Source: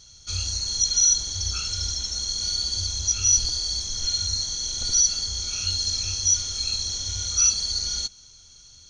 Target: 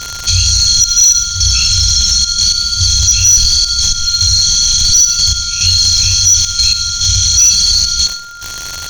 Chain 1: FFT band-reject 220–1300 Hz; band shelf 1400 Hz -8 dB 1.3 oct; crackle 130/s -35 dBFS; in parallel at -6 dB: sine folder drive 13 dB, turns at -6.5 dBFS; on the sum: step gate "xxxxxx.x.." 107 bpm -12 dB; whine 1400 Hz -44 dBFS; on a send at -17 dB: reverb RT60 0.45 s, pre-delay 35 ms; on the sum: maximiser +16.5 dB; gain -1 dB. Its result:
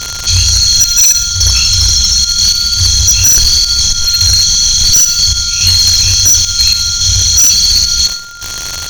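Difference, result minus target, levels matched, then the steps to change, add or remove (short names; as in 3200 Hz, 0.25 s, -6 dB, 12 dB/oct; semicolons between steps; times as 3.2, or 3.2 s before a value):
sine folder: distortion +10 dB
change: sine folder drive 7 dB, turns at -6.5 dBFS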